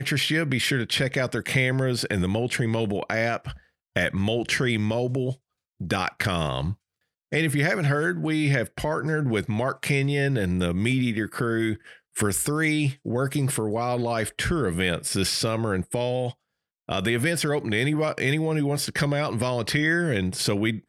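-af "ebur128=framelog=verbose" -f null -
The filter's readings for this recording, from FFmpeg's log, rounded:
Integrated loudness:
  I:         -24.9 LUFS
  Threshold: -35.1 LUFS
Loudness range:
  LRA:         2.2 LU
  Threshold: -45.4 LUFS
  LRA low:   -26.5 LUFS
  LRA high:  -24.3 LUFS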